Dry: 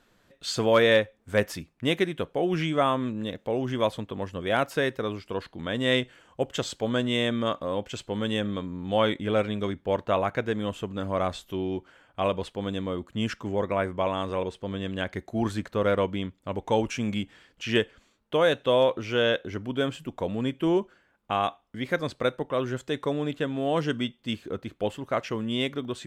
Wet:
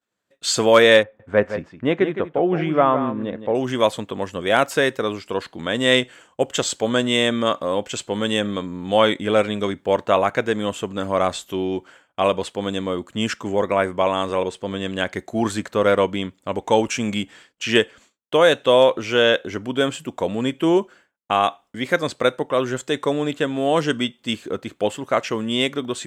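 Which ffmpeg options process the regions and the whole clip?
-filter_complex "[0:a]asettb=1/sr,asplit=3[s0][s1][s2];[s0]atrim=end=1.034[s3];[s1]atrim=start=1.03:end=3.55,asetpts=PTS-STARTPTS,afade=t=in:d=0.004:c=qsin,afade=t=out:st=2.516:d=0.004:c=qsin,lowpass=1600,aecho=1:1:164:0.316,atrim=end_sample=111132[s4];[s2]atrim=start=3.546[s5];[s3][s4]acrossfade=d=0.004:c1=hsin:c2=qsin[s6];[s6][s5]acrossfade=d=0.004:c1=qsin:c2=hsin,agate=range=0.0224:threshold=0.00355:ratio=3:detection=peak,highpass=f=230:p=1,equalizer=f=7600:t=o:w=0.54:g=7,volume=2.51"

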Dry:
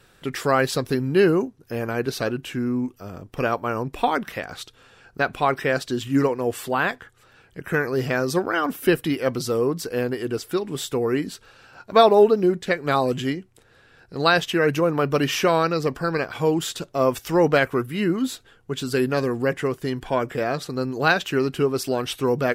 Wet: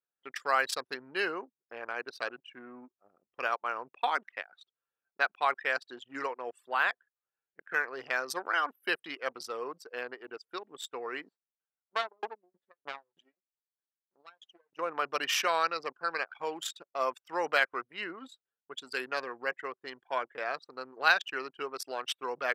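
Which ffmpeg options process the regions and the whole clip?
-filter_complex "[0:a]asettb=1/sr,asplit=3[s0][s1][s2];[s0]atrim=end=11.294[s3];[s1]atrim=start=11.29:end=14.79,asetpts=PTS-STARTPTS,afade=t=in:d=0.004:c=qsin,afade=t=out:st=3.496:d=0.004:c=qsin,aeval=exprs='max(val(0),0)':c=same,aeval=exprs='val(0)*pow(10,-23*if(lt(mod(3.2*n/s,1),2*abs(3.2)/1000),1-mod(3.2*n/s,1)/(2*abs(3.2)/1000),(mod(3.2*n/s,1)-2*abs(3.2)/1000)/(1-2*abs(3.2)/1000))/20)':c=same[s4];[s2]atrim=start=14.786[s5];[s3][s4]acrossfade=d=0.004:c1=hsin:c2=qsin[s6];[s6][s5]acrossfade=d=0.004:c1=qsin:c2=hsin,anlmdn=158,highpass=970,volume=0.708"

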